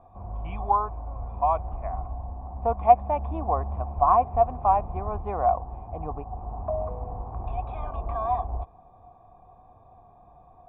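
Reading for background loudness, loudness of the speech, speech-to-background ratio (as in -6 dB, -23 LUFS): -34.5 LUFS, -25.0 LUFS, 9.5 dB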